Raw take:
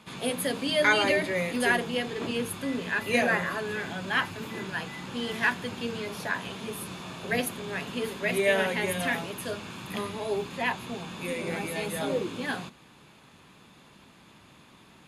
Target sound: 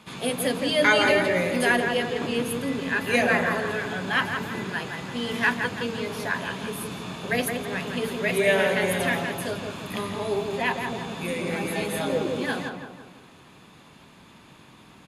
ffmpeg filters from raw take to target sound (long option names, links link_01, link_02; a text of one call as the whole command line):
ffmpeg -i in.wav -filter_complex "[0:a]asplit=2[link_01][link_02];[link_02]adelay=167,lowpass=frequency=1800:poles=1,volume=-4dB,asplit=2[link_03][link_04];[link_04]adelay=167,lowpass=frequency=1800:poles=1,volume=0.51,asplit=2[link_05][link_06];[link_06]adelay=167,lowpass=frequency=1800:poles=1,volume=0.51,asplit=2[link_07][link_08];[link_08]adelay=167,lowpass=frequency=1800:poles=1,volume=0.51,asplit=2[link_09][link_10];[link_10]adelay=167,lowpass=frequency=1800:poles=1,volume=0.51,asplit=2[link_11][link_12];[link_12]adelay=167,lowpass=frequency=1800:poles=1,volume=0.51,asplit=2[link_13][link_14];[link_14]adelay=167,lowpass=frequency=1800:poles=1,volume=0.51[link_15];[link_01][link_03][link_05][link_07][link_09][link_11][link_13][link_15]amix=inputs=8:normalize=0,volume=2.5dB" out.wav